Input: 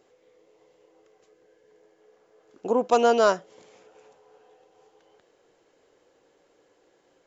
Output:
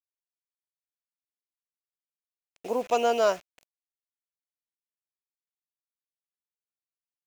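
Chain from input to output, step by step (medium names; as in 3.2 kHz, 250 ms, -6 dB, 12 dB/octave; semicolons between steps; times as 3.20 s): bit crusher 7-bit; fifteen-band graphic EQ 630 Hz +6 dB, 2.5 kHz +10 dB, 6.3 kHz +5 dB; trim -8 dB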